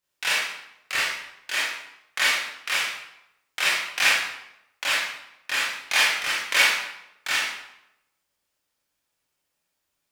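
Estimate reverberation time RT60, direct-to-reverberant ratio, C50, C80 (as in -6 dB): 0.85 s, -8.0 dB, 0.5 dB, 4.0 dB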